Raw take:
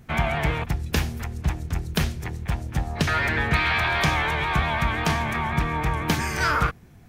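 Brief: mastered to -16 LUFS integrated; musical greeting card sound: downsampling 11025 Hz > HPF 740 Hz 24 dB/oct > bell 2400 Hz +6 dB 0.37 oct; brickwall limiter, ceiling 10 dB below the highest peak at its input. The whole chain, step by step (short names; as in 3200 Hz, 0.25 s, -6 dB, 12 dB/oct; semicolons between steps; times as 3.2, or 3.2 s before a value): limiter -17.5 dBFS; downsampling 11025 Hz; HPF 740 Hz 24 dB/oct; bell 2400 Hz +6 dB 0.37 oct; gain +10.5 dB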